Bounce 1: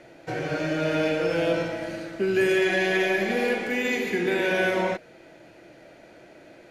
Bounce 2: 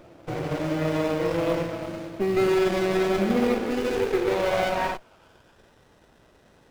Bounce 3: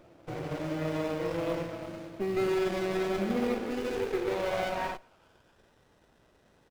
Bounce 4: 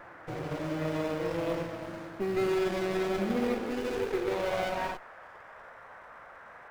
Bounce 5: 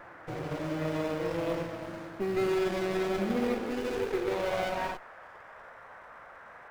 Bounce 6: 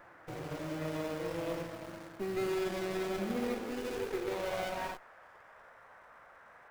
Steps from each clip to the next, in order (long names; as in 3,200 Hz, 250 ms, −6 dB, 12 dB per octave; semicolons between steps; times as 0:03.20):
high-pass filter sweep 75 Hz → 2,200 Hz, 0:02.32–0:05.81; noise that follows the level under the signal 28 dB; windowed peak hold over 17 samples
slap from a distant wall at 24 metres, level −28 dB; level −7 dB
noise in a band 490–1,800 Hz −50 dBFS
no processing that can be heard
high-shelf EQ 5,900 Hz +7 dB; in parallel at −11.5 dB: bit-depth reduction 6 bits, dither none; on the sum: level −7.5 dB